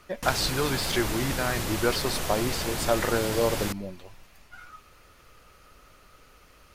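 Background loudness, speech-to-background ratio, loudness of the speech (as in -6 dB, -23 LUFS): -31.0 LUFS, 2.5 dB, -28.5 LUFS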